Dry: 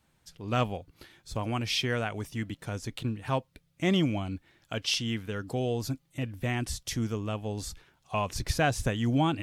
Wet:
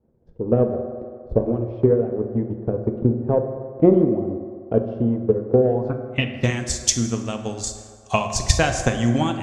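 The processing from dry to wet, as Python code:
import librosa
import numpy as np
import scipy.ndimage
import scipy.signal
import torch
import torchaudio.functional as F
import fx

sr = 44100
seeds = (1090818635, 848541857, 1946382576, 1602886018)

y = fx.filter_sweep_lowpass(x, sr, from_hz=460.0, to_hz=7100.0, start_s=5.56, end_s=6.53, q=3.6)
y = fx.transient(y, sr, attack_db=11, sustain_db=-3)
y = fx.rev_fdn(y, sr, rt60_s=2.1, lf_ratio=0.7, hf_ratio=0.45, size_ms=26.0, drr_db=5.0)
y = F.gain(torch.from_numpy(y), 1.5).numpy()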